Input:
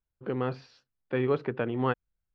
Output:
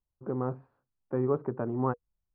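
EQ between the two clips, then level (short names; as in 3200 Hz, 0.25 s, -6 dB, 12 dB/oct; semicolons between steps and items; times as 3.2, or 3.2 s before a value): Chebyshev low-pass 1100 Hz, order 3; notch 480 Hz, Q 12; 0.0 dB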